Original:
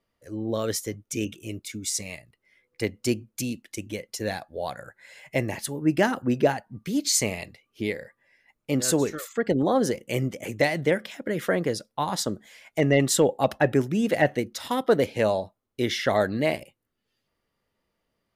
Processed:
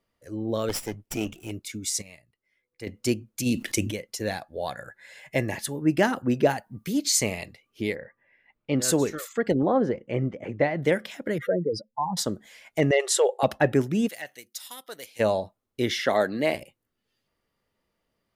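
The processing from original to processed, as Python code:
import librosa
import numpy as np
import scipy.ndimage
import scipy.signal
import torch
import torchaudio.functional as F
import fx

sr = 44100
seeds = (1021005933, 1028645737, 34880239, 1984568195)

y = fx.lower_of_two(x, sr, delay_ms=0.38, at=(0.69, 1.51))
y = fx.env_flatten(y, sr, amount_pct=50, at=(3.45, 3.9), fade=0.02)
y = fx.small_body(y, sr, hz=(1700.0, 3600.0), ring_ms=45, db=10, at=(4.59, 5.84))
y = fx.high_shelf(y, sr, hz=9800.0, db=11.5, at=(6.5, 6.93))
y = fx.lowpass(y, sr, hz=fx.line((7.94, 2100.0), (8.8, 4400.0)), slope=24, at=(7.94, 8.8), fade=0.02)
y = fx.lowpass(y, sr, hz=1700.0, slope=12, at=(9.55, 10.83))
y = fx.spec_expand(y, sr, power=3.0, at=(11.38, 12.17))
y = fx.brickwall_bandpass(y, sr, low_hz=360.0, high_hz=12000.0, at=(12.91, 13.43))
y = fx.pre_emphasis(y, sr, coefficient=0.97, at=(14.07, 15.19), fade=0.02)
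y = fx.highpass(y, sr, hz=200.0, slope=12, at=(15.91, 16.55))
y = fx.edit(y, sr, fx.clip_gain(start_s=2.02, length_s=0.85, db=-10.5), tone=tone)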